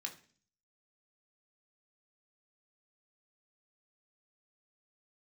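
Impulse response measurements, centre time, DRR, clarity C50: 12 ms, 2.0 dB, 12.5 dB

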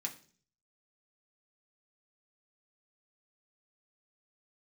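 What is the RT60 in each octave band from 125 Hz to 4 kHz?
0.75, 0.60, 0.50, 0.40, 0.40, 0.50 seconds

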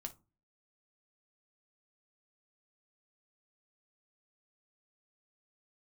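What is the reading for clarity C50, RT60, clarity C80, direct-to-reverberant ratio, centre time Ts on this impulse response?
17.0 dB, 0.30 s, 26.5 dB, 4.5 dB, 7 ms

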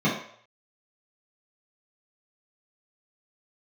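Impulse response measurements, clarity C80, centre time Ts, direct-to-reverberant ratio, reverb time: 8.5 dB, 37 ms, −10.0 dB, 0.60 s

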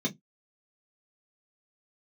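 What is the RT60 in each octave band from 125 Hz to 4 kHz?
0.20, 0.20, 0.15, 0.10, 0.10, 0.10 seconds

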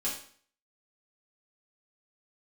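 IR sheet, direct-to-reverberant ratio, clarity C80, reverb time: −7.0 dB, 9.5 dB, 0.50 s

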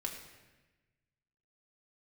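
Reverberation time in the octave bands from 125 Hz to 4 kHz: 1.8, 1.5, 1.2, 1.1, 1.3, 1.0 seconds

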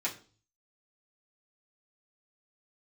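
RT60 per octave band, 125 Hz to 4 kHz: 0.75, 0.50, 0.45, 0.35, 0.35, 0.40 seconds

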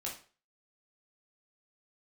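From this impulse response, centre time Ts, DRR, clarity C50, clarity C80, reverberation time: 27 ms, −4.0 dB, 7.0 dB, 13.0 dB, 0.40 s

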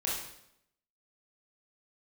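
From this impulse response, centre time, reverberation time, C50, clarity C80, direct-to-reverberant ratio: 56 ms, 0.75 s, 1.5 dB, 5.5 dB, −5.5 dB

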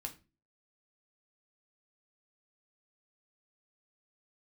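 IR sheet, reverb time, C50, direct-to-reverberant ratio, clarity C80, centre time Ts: 0.30 s, 14.5 dB, 2.5 dB, 21.0 dB, 8 ms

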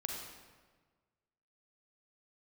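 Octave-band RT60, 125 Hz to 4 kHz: 1.7, 1.6, 1.5, 1.4, 1.2, 1.0 seconds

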